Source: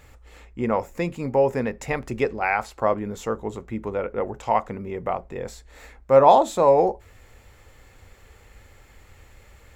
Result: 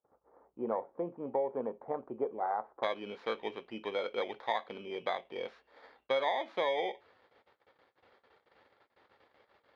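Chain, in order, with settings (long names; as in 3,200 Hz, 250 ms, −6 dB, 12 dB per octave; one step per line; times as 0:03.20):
samples in bit-reversed order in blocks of 16 samples
low-pass filter 1,100 Hz 24 dB per octave, from 0:02.83 3,300 Hz
noise gate −49 dBFS, range −27 dB
high-pass filter 320 Hz 12 dB per octave
low-shelf EQ 460 Hz −6.5 dB
downward compressor 6 to 1, threshold −26 dBFS, peak gain reduction 14 dB
level −2.5 dB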